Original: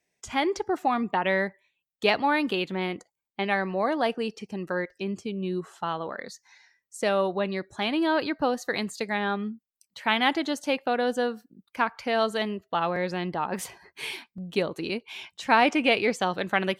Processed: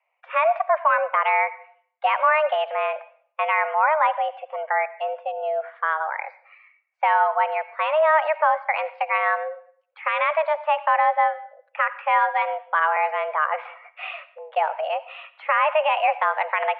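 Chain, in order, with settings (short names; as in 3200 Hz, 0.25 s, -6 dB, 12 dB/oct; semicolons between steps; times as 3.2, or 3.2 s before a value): limiter -16 dBFS, peak gain reduction 9.5 dB; reverb RT60 0.50 s, pre-delay 35 ms, DRR 15.5 dB; mistuned SSB +310 Hz 240–2200 Hz; gain +7 dB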